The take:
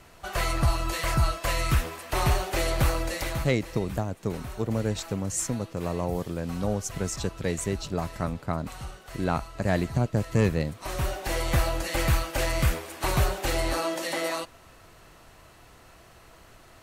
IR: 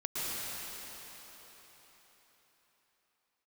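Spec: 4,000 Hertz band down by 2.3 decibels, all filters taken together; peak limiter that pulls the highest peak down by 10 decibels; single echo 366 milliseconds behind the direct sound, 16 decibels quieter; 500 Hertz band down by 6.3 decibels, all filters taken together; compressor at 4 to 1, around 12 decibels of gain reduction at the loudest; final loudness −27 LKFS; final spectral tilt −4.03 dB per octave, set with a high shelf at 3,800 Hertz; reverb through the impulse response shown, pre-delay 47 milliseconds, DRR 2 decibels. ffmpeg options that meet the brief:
-filter_complex "[0:a]equalizer=frequency=500:width_type=o:gain=-8.5,highshelf=frequency=3800:gain=8,equalizer=frequency=4000:width_type=o:gain=-8,acompressor=threshold=-33dB:ratio=4,alimiter=level_in=5dB:limit=-24dB:level=0:latency=1,volume=-5dB,aecho=1:1:366:0.158,asplit=2[link_01][link_02];[1:a]atrim=start_sample=2205,adelay=47[link_03];[link_02][link_03]afir=irnorm=-1:irlink=0,volume=-8.5dB[link_04];[link_01][link_04]amix=inputs=2:normalize=0,volume=10.5dB"

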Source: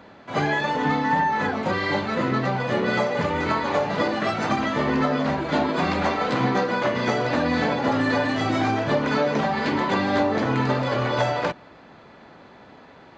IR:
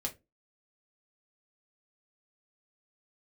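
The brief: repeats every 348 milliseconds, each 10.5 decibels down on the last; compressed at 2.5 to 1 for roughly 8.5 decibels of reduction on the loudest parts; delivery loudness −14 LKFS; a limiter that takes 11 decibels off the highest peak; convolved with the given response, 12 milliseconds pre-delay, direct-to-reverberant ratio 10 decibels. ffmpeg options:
-filter_complex "[0:a]acompressor=threshold=-31dB:ratio=2.5,alimiter=level_in=3.5dB:limit=-24dB:level=0:latency=1,volume=-3.5dB,aecho=1:1:348|696|1044:0.299|0.0896|0.0269,asplit=2[link_01][link_02];[1:a]atrim=start_sample=2205,adelay=12[link_03];[link_02][link_03]afir=irnorm=-1:irlink=0,volume=-11dB[link_04];[link_01][link_04]amix=inputs=2:normalize=0,volume=20.5dB"

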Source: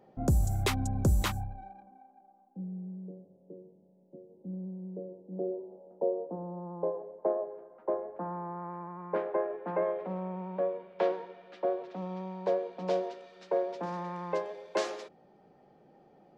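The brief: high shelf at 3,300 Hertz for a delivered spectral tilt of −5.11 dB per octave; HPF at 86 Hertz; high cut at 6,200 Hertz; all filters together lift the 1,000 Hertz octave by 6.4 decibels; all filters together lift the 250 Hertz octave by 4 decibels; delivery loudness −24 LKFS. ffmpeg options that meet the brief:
ffmpeg -i in.wav -af "highpass=86,lowpass=6200,equalizer=frequency=250:width_type=o:gain=6,equalizer=frequency=1000:width_type=o:gain=8.5,highshelf=frequency=3300:gain=-8.5,volume=7.5dB" out.wav

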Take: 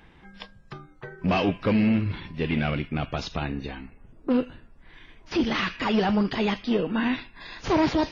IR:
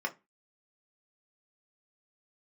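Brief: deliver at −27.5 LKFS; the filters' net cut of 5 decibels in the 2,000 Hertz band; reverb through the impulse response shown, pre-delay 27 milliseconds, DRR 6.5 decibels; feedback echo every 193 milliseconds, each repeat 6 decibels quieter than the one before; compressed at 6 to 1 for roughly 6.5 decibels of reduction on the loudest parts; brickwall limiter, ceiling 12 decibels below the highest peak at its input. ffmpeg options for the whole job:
-filter_complex "[0:a]equalizer=frequency=2000:width_type=o:gain=-6.5,acompressor=threshold=-25dB:ratio=6,alimiter=level_in=3.5dB:limit=-24dB:level=0:latency=1,volume=-3.5dB,aecho=1:1:193|386|579|772|965|1158:0.501|0.251|0.125|0.0626|0.0313|0.0157,asplit=2[link_01][link_02];[1:a]atrim=start_sample=2205,adelay=27[link_03];[link_02][link_03]afir=irnorm=-1:irlink=0,volume=-11.5dB[link_04];[link_01][link_04]amix=inputs=2:normalize=0,volume=7.5dB"

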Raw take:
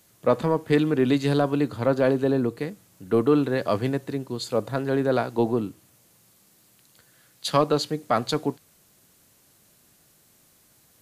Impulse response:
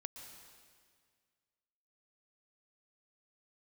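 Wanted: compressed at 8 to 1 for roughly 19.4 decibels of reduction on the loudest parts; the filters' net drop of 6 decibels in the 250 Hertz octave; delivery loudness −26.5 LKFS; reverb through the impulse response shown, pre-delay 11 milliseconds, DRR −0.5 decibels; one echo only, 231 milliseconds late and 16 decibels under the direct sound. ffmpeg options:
-filter_complex "[0:a]equalizer=frequency=250:width_type=o:gain=-7.5,acompressor=threshold=-37dB:ratio=8,aecho=1:1:231:0.158,asplit=2[link_01][link_02];[1:a]atrim=start_sample=2205,adelay=11[link_03];[link_02][link_03]afir=irnorm=-1:irlink=0,volume=4dB[link_04];[link_01][link_04]amix=inputs=2:normalize=0,volume=12dB"

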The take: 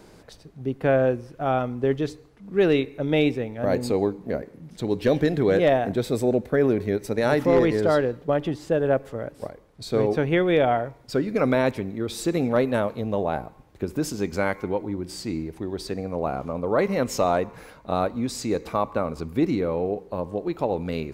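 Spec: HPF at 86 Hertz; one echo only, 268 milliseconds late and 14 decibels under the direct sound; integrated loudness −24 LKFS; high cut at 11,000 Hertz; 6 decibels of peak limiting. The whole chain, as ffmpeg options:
ffmpeg -i in.wav -af "highpass=86,lowpass=11000,alimiter=limit=-13.5dB:level=0:latency=1,aecho=1:1:268:0.2,volume=2.5dB" out.wav

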